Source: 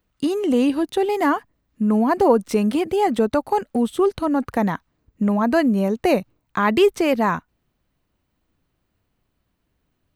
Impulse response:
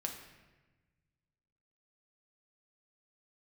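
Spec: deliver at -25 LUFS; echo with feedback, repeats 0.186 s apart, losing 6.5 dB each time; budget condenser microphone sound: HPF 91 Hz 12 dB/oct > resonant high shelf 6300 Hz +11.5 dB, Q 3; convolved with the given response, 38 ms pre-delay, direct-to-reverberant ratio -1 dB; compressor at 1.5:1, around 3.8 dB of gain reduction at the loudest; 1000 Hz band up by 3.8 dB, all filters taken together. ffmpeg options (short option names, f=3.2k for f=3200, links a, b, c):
-filter_complex "[0:a]equalizer=f=1k:t=o:g=5,acompressor=threshold=-20dB:ratio=1.5,aecho=1:1:186|372|558|744|930|1116:0.473|0.222|0.105|0.0491|0.0231|0.0109,asplit=2[a][b];[1:a]atrim=start_sample=2205,adelay=38[c];[b][c]afir=irnorm=-1:irlink=0,volume=1dB[d];[a][d]amix=inputs=2:normalize=0,highpass=91,highshelf=f=6.3k:t=q:w=3:g=11.5,volume=-8dB"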